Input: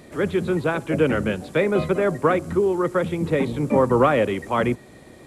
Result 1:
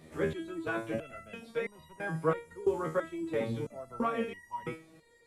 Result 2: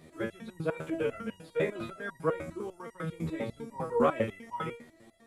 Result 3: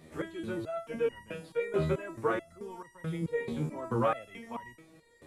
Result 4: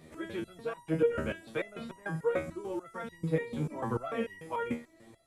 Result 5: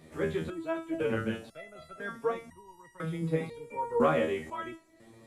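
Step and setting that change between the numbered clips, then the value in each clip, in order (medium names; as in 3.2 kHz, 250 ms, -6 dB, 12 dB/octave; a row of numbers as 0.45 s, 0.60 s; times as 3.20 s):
resonator arpeggio, rate: 3 Hz, 10 Hz, 4.6 Hz, 6.8 Hz, 2 Hz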